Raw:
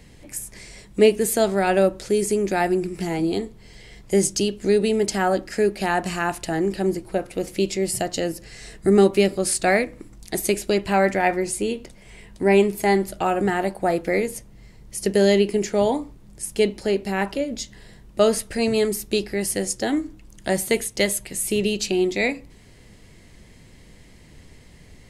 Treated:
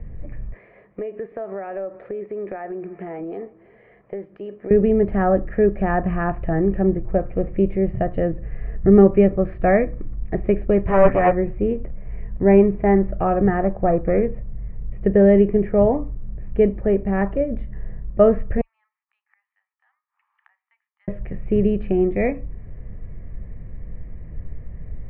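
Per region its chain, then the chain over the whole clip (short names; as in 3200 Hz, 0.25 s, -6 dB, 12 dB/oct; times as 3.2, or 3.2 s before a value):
0.53–4.71 HPF 430 Hz + compressor 10:1, threshold -28 dBFS + echo 0.329 s -23 dB
10.87–11.32 comb 7.3 ms, depth 91% + Doppler distortion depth 0.43 ms
13.63–14.23 high shelf 4000 Hz -9 dB + running maximum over 5 samples
18.61–21.08 flipped gate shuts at -23 dBFS, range -28 dB + rippled Chebyshev high-pass 840 Hz, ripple 3 dB
whole clip: steep low-pass 2200 Hz 36 dB/oct; tilt -3.5 dB/oct; comb 1.7 ms, depth 38%; gain -1 dB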